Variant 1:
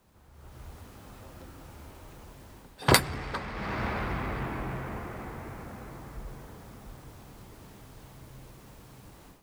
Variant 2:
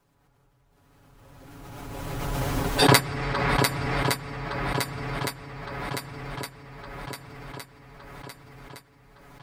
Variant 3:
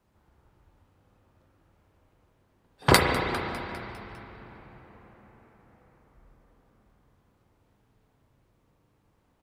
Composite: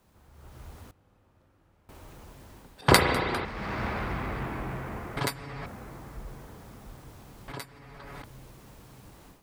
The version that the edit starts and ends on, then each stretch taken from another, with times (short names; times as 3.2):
1
0.91–1.89 from 3
2.81–3.45 from 3
5.17–5.66 from 2
7.48–8.24 from 2